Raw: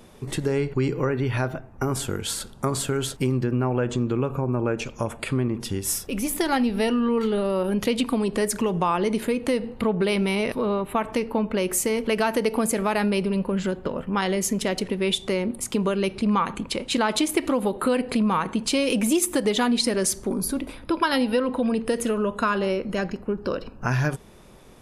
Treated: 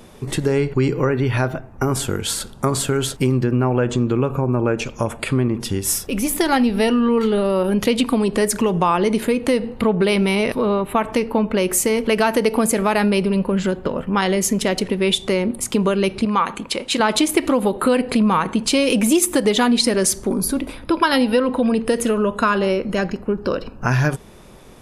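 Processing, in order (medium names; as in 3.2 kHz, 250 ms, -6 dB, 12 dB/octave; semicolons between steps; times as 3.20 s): 16.25–17.00 s: bass shelf 210 Hz -11.5 dB; trim +5.5 dB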